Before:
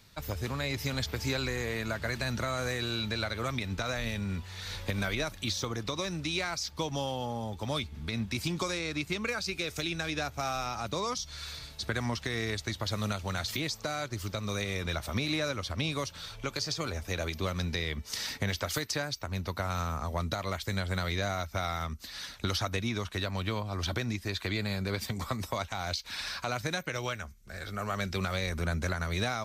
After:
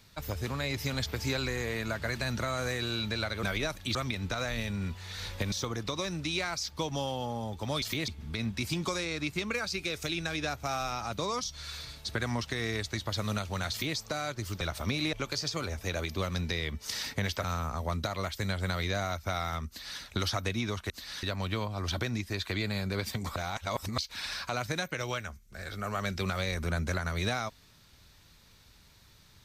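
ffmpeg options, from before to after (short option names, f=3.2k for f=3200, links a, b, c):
-filter_complex "[0:a]asplit=13[a][b][c][d][e][f][g][h][i][j][k][l][m];[a]atrim=end=3.432[n];[b]atrim=start=4.998:end=5.522[o];[c]atrim=start=3.428:end=5.002[p];[d]atrim=start=5.518:end=7.822[q];[e]atrim=start=13.448:end=13.712[r];[f]atrim=start=7.818:end=14.352[s];[g]atrim=start=14.888:end=15.412[t];[h]atrim=start=16.368:end=18.682[u];[i]atrim=start=19.718:end=23.182[v];[j]atrim=start=21.958:end=22.292[w];[k]atrim=start=23.178:end=25.312[x];[l]atrim=start=25.308:end=25.932,asetpts=PTS-STARTPTS,areverse[y];[m]atrim=start=25.928[z];[n][o]acrossfade=d=0.004:c1=hsin:c2=hsin[aa];[aa][p]acrossfade=d=0.004:c1=hsin:c2=hsin[ab];[ab][q]acrossfade=d=0.004:c1=hsin:c2=hsin[ac];[ac][r]acrossfade=d=0.004:c1=hsin:c2=hsin[ad];[ad][s]acrossfade=d=0.004:c1=hsin:c2=hsin[ae];[ae][t]acrossfade=d=0.004:c1=hsin:c2=hsin[af];[af][u]acrossfade=d=0.004:c1=hsin:c2=hsin[ag];[ag][v]acrossfade=d=0.004:c1=hsin:c2=hsin[ah];[ah][w]acrossfade=d=0.004:c1=hsin:c2=hsin[ai];[ai][x]acrossfade=d=0.004:c1=hsin:c2=hsin[aj];[aj][y]acrossfade=d=0.004:c1=hsin:c2=hsin[ak];[ak][z]acrossfade=d=0.004:c1=hsin:c2=hsin"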